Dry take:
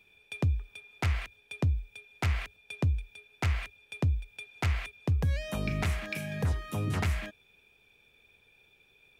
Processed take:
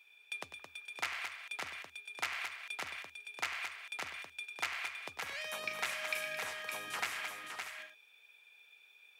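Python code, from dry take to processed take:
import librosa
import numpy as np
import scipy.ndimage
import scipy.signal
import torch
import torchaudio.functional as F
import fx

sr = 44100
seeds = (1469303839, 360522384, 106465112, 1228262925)

p1 = scipy.signal.sosfilt(scipy.signal.butter(2, 1000.0, 'highpass', fs=sr, output='sos'), x)
y = p1 + fx.echo_multitap(p1, sr, ms=(98, 219, 564, 638), db=(-13.0, -8.0, -6.0, -14.5), dry=0)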